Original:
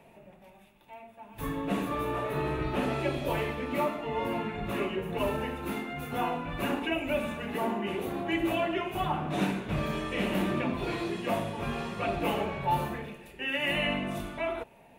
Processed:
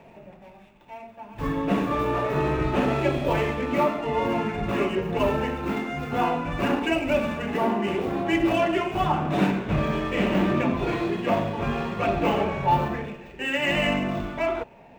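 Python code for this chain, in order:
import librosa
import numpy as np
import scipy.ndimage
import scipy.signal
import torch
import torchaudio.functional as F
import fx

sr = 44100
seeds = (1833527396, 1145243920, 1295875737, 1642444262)

y = scipy.signal.medfilt(x, 9)
y = fx.peak_eq(y, sr, hz=11000.0, db=fx.steps((0.0, -8.0), (9.5, -14.0)), octaves=1.1)
y = F.gain(torch.from_numpy(y), 7.0).numpy()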